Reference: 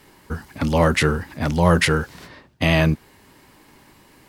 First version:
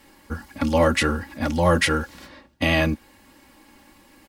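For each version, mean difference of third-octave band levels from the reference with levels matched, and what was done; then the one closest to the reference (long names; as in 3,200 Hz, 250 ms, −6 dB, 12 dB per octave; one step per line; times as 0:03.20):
2.0 dB: comb filter 3.6 ms, depth 69%
level −3 dB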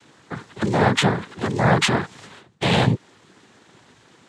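4.5 dB: cochlear-implant simulation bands 6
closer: first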